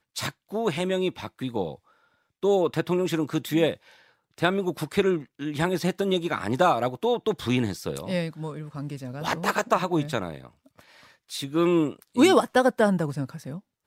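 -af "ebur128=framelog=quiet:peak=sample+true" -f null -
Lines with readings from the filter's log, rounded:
Integrated loudness:
  I:         -25.7 LUFS
  Threshold: -36.4 LUFS
Loudness range:
  LRA:         4.6 LU
  Threshold: -46.6 LUFS
  LRA low:   -28.9 LUFS
  LRA high:  -24.3 LUFS
Sample peak:
  Peak:       -6.1 dBFS
True peak:
  Peak:       -6.1 dBFS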